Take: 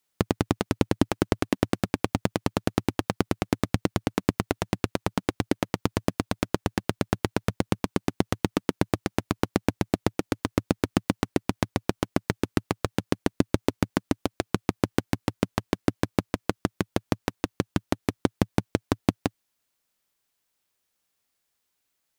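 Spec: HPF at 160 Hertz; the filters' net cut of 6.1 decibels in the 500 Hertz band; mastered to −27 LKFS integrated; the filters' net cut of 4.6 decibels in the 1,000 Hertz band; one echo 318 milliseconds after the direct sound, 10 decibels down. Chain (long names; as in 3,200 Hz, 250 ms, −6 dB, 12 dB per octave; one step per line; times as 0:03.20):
high-pass filter 160 Hz
parametric band 500 Hz −7.5 dB
parametric band 1,000 Hz −3.5 dB
single-tap delay 318 ms −10 dB
level +5 dB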